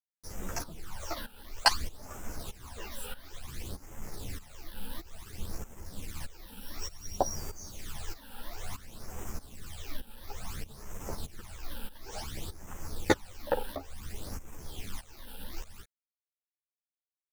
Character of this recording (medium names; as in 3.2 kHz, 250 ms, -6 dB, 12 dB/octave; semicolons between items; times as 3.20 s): a quantiser's noise floor 8-bit, dither none; phasing stages 12, 0.57 Hz, lowest notch 110–4200 Hz; tremolo saw up 1.6 Hz, depth 85%; a shimmering, thickened sound